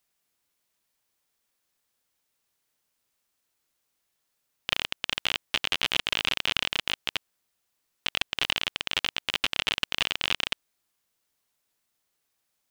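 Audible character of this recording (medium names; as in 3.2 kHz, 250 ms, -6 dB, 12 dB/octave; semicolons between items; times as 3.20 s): noise floor -78 dBFS; spectral tilt -0.5 dB/octave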